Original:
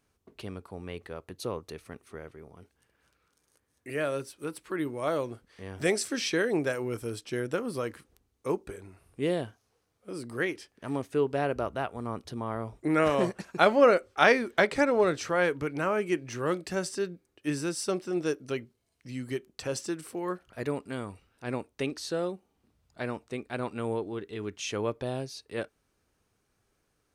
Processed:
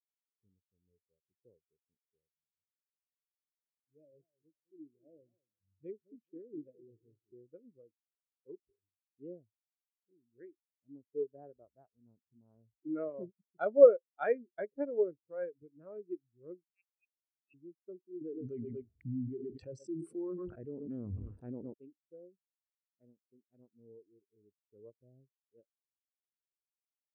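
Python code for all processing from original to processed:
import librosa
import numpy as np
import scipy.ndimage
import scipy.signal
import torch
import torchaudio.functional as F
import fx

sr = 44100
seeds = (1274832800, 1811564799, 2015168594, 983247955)

y = fx.chain(x, sr, fx.env_phaser(low_hz=320.0, high_hz=1200.0, full_db=-28.5),
    fx.echo_warbled(ms=211, feedback_pct=33, rate_hz=2.8, cents=210, wet_db=-9.0), at=(2.31, 7.32))
y = fx.chain(y, sr, fx.freq_invert(carrier_hz=2900),
    fx.transient(attack_db=-12, sustain_db=-5), at=(16.67, 17.54))
y = fx.chain(y, sr, fx.echo_feedback(ms=118, feedback_pct=26, wet_db=-20),
    fx.env_flatten(amount_pct=100), at=(18.21, 21.74))
y = fx.wiener(y, sr, points=41)
y = fx.spectral_expand(y, sr, expansion=2.5)
y = y * librosa.db_to_amplitude(-3.5)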